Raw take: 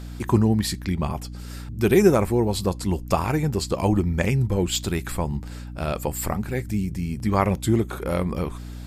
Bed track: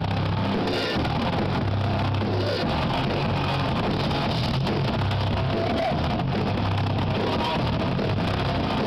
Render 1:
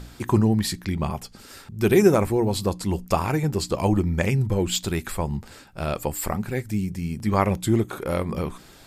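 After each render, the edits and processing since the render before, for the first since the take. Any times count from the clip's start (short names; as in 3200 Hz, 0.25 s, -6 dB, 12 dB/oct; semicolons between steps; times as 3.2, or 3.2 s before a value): de-hum 60 Hz, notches 5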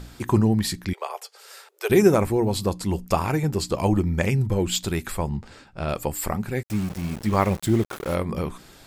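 0.93–1.9 steep high-pass 420 Hz 72 dB/oct; 5.29–5.89 air absorption 69 m; 6.63–8.15 sample gate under -33 dBFS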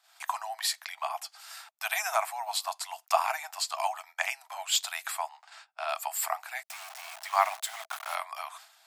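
Chebyshev high-pass 650 Hz, order 8; gate -50 dBFS, range -19 dB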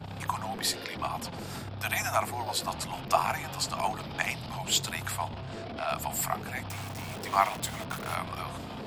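add bed track -15.5 dB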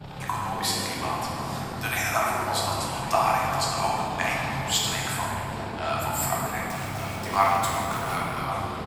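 outdoor echo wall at 190 m, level -10 dB; plate-style reverb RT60 2.8 s, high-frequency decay 0.5×, DRR -4 dB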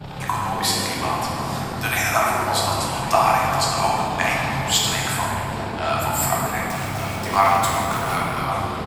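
gain +5.5 dB; limiter -3 dBFS, peak gain reduction 2.5 dB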